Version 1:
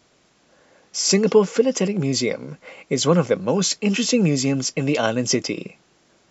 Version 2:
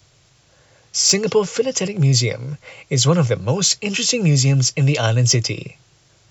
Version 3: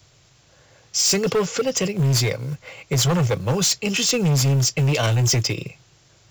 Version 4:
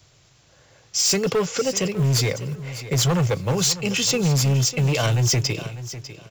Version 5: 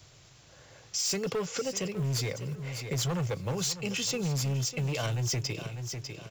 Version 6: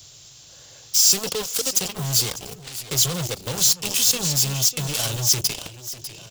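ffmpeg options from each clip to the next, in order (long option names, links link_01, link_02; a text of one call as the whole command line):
ffmpeg -i in.wav -filter_complex "[0:a]lowshelf=frequency=160:width_type=q:width=3:gain=10,acrossover=split=240|650|2700[link_01][link_02][link_03][link_04];[link_04]acontrast=59[link_05];[link_01][link_02][link_03][link_05]amix=inputs=4:normalize=0" out.wav
ffmpeg -i in.wav -af "asoftclip=type=hard:threshold=-15.5dB,acrusher=bits=7:mode=log:mix=0:aa=0.000001" out.wav
ffmpeg -i in.wav -af "aecho=1:1:599|1198:0.2|0.0439,volume=-1dB" out.wav
ffmpeg -i in.wav -af "acompressor=threshold=-38dB:ratio=2" out.wav
ffmpeg -i in.wav -af "aeval=exprs='0.0794*(cos(1*acos(clip(val(0)/0.0794,-1,1)))-cos(1*PI/2))+0.0251*(cos(7*acos(clip(val(0)/0.0794,-1,1)))-cos(7*PI/2))':channel_layout=same,aexciter=amount=3.9:drive=5:freq=3000" out.wav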